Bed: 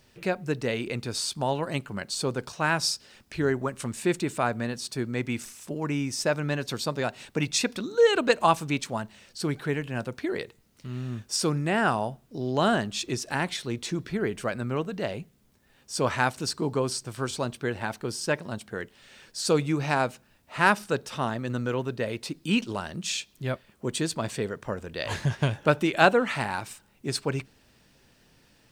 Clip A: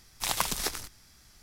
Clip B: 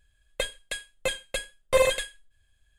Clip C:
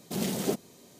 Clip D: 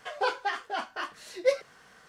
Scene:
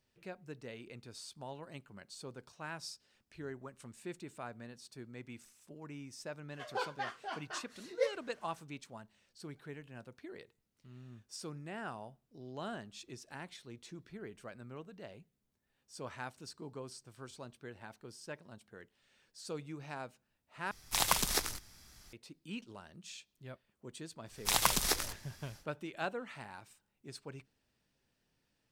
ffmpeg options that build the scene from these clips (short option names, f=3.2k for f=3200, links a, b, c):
-filter_complex "[1:a]asplit=2[a][b];[0:a]volume=-19dB,asplit=2[c][d];[c]atrim=end=20.714[e];[a]atrim=end=1.42,asetpts=PTS-STARTPTS,volume=-1dB[f];[d]atrim=start=22.126[g];[4:a]atrim=end=2.08,asetpts=PTS-STARTPTS,volume=-9.5dB,afade=t=in:d=0.004:c=hsin,afade=t=out:st=2.076:d=0.004:c=hsin,adelay=6540[h];[b]atrim=end=1.42,asetpts=PTS-STARTPTS,afade=t=in:d=0.1,afade=t=out:st=1.32:d=0.1,adelay=24250[i];[e][f]acrossfade=d=0.004:c1=hsin:c2=hsin[j];[j][g]acrossfade=d=0.004:c1=hsin:c2=hsin[k];[k][h][i]amix=inputs=3:normalize=0"